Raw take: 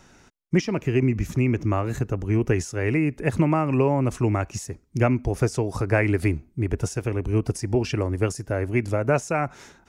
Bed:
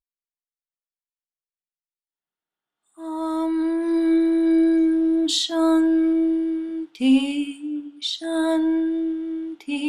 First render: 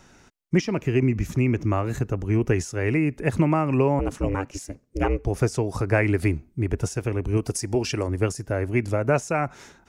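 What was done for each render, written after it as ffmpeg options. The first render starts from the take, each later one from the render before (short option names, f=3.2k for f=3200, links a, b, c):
-filter_complex "[0:a]asettb=1/sr,asplit=3[a][b][c];[a]atrim=end=3.994[d];[b]atrim=start=3.99:end=5.26,asetpts=PTS-STARTPTS,afade=t=in:d=0.004:c=qsin,afade=t=out:st=1.266:d=0.004:c=qsin,aeval=exprs='val(0)*sin(2*PI*190*n/s)':c=same[e];[c]atrim=start=5.256[f];[d][e]acrossfade=d=0.004:c1=hsin:c2=qsin[g];[g][f]acrossfade=d=0.004:c1=qsin:c2=hsin,asettb=1/sr,asplit=3[h][i][j];[h]atrim=end=7.374[k];[i]atrim=start=7.37:end=8.08,asetpts=PTS-STARTPTS,afade=t=in:d=0.004:c=qsin,afade=t=out:st=0.706:d=0.004:c=qsin,bass=f=250:g=-4,treble=f=4k:g=7[l];[j]atrim=start=8.076[m];[k][l]acrossfade=d=0.004:c1=hsin:c2=qsin[n];[n][m]acrossfade=d=0.004:c1=qsin:c2=hsin"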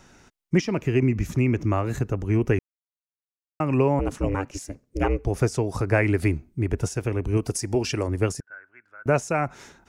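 -filter_complex "[0:a]asettb=1/sr,asplit=3[a][b][c];[a]atrim=end=8.404[d];[b]atrim=start=8.4:end=9.06,asetpts=PTS-STARTPTS,afade=t=in:d=0.004:c=qsin,afade=t=out:st=0.656:d=0.004:c=qsin,bandpass=f=1.5k:t=q:w=16[e];[c]atrim=start=9.056[f];[d][e]acrossfade=d=0.004:c1=hsin:c2=qsin[g];[g][f]acrossfade=d=0.004:c1=qsin:c2=hsin,asplit=3[h][i][j];[h]atrim=end=2.59,asetpts=PTS-STARTPTS,afade=t=out:st=2.586:d=0.004:c=hsin[k];[i]atrim=start=2.59:end=3.6,asetpts=PTS-STARTPTS,volume=0[l];[j]atrim=start=3.6,asetpts=PTS-STARTPTS,afade=t=in:d=0.004:c=hsin[m];[k][l][m]concat=n=3:v=0:a=1"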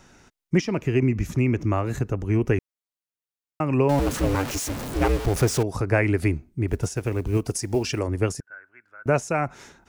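-filter_complex "[0:a]asettb=1/sr,asplit=3[a][b][c];[a]atrim=end=3.894[d];[b]atrim=start=3.89:end=5.63,asetpts=PTS-STARTPTS,afade=t=in:d=0.004:c=qsin,afade=t=out:st=1.736:d=0.004:c=qsin,aeval=exprs='val(0)+0.5*0.0501*sgn(val(0))':c=same[e];[c]atrim=start=5.626[f];[d][e]acrossfade=d=0.004:c1=hsin:c2=qsin[g];[g][f]acrossfade=d=0.004:c1=qsin:c2=hsin,asplit=3[h][i][j];[h]afade=t=out:st=6.67:d=0.02[k];[i]acrusher=bits=8:mode=log:mix=0:aa=0.000001,afade=t=in:st=6.67:d=0.02,afade=t=out:st=7.98:d=0.02[l];[j]afade=t=in:st=7.98:d=0.02[m];[k][l][m]amix=inputs=3:normalize=0"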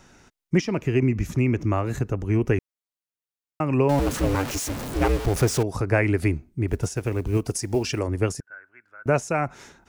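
-af anull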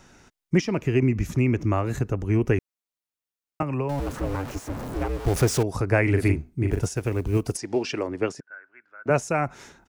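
-filter_complex "[0:a]asettb=1/sr,asplit=3[a][b][c];[a]atrim=end=3.624[d];[b]atrim=start=3.62:end=5.26,asetpts=PTS-STARTPTS,afade=t=in:d=0.004:c=qsin,afade=t=out:st=1.636:d=0.004:c=qsin,acrossover=split=120|580|1600[e][f][g][h];[e]acompressor=threshold=-30dB:ratio=3[i];[f]acompressor=threshold=-32dB:ratio=3[j];[g]acompressor=threshold=-34dB:ratio=3[k];[h]acompressor=threshold=-48dB:ratio=3[l];[i][j][k][l]amix=inputs=4:normalize=0[m];[c]atrim=start=5.256[n];[d][m]acrossfade=d=0.004:c1=hsin:c2=qsin[o];[o][n]acrossfade=d=0.004:c1=qsin:c2=hsin,asplit=3[p][q][r];[p]afade=t=out:st=6.06:d=0.02[s];[q]asplit=2[t][u];[u]adelay=41,volume=-5dB[v];[t][v]amix=inputs=2:normalize=0,afade=t=in:st=6.06:d=0.02,afade=t=out:st=6.79:d=0.02[w];[r]afade=t=in:st=6.79:d=0.02[x];[s][w][x]amix=inputs=3:normalize=0,asplit=3[y][z][aa];[y]afade=t=out:st=7.56:d=0.02[ab];[z]highpass=220,lowpass=4.6k,afade=t=in:st=7.56:d=0.02,afade=t=out:st=9.09:d=0.02[ac];[aa]afade=t=in:st=9.09:d=0.02[ad];[ab][ac][ad]amix=inputs=3:normalize=0"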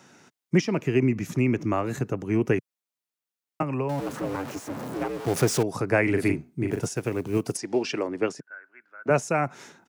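-af "highpass=f=130:w=0.5412,highpass=f=130:w=1.3066"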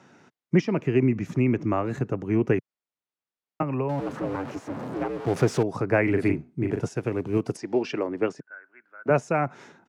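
-af "aemphasis=mode=reproduction:type=75fm"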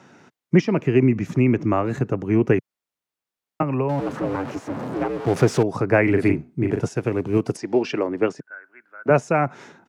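-af "volume=4.5dB"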